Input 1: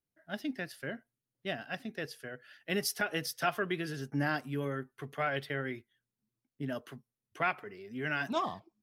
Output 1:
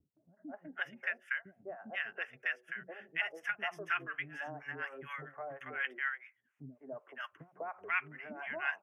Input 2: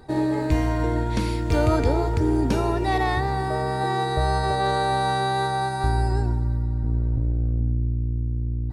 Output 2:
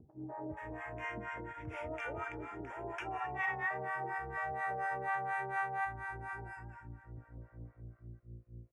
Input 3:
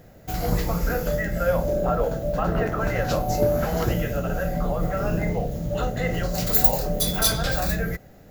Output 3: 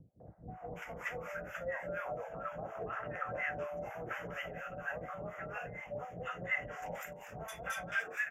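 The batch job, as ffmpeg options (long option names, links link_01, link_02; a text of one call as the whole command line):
ffmpeg -i in.wav -filter_complex "[0:a]acrossover=split=290|980[link_01][link_02][link_03];[link_02]adelay=200[link_04];[link_03]adelay=480[link_05];[link_01][link_04][link_05]amix=inputs=3:normalize=0,acompressor=threshold=-41dB:ratio=3,highpass=83,acompressor=mode=upward:threshold=-52dB:ratio=2.5,bandreject=frequency=185:width_type=h:width=4,bandreject=frequency=370:width_type=h:width=4,bandreject=frequency=555:width_type=h:width=4,acrossover=split=710[link_06][link_07];[link_06]aeval=exprs='val(0)*(1-1/2+1/2*cos(2*PI*4.2*n/s))':channel_layout=same[link_08];[link_07]aeval=exprs='val(0)*(1-1/2-1/2*cos(2*PI*4.2*n/s))':channel_layout=same[link_09];[link_08][link_09]amix=inputs=2:normalize=0,acrossover=split=570 5100:gain=0.224 1 0.0708[link_10][link_11][link_12];[link_10][link_11][link_12]amix=inputs=3:normalize=0,aresample=32000,aresample=44100,asuperstop=centerf=4200:order=4:qfactor=1,equalizer=frequency=2300:width=0.82:gain=6,volume=8.5dB" out.wav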